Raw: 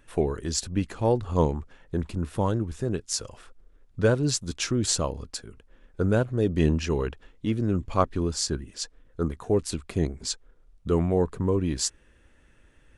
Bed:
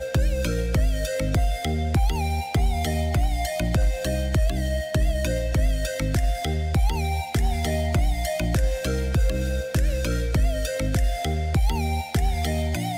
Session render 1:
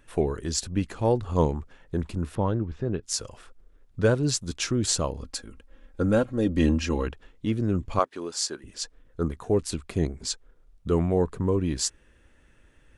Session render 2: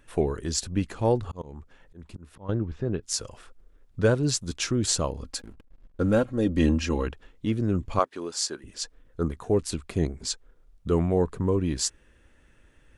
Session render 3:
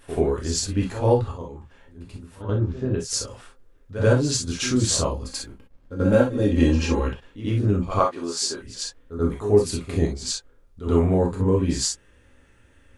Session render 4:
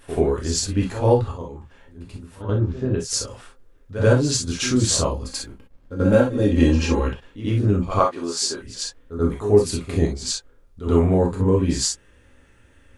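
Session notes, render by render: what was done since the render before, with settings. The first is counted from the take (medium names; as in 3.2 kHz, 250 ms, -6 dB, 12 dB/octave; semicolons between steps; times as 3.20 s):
2.35–3.03 s: distance through air 230 m; 5.23–7.08 s: comb 3.7 ms; 7.99–8.64 s: high-pass 440 Hz
1.21–2.49 s: slow attack 449 ms; 5.39–6.22 s: hysteresis with a dead band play -44 dBFS
pre-echo 86 ms -12 dB; gated-style reverb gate 80 ms flat, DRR -0.5 dB
trim +2 dB; peak limiter -3 dBFS, peak gain reduction 1.5 dB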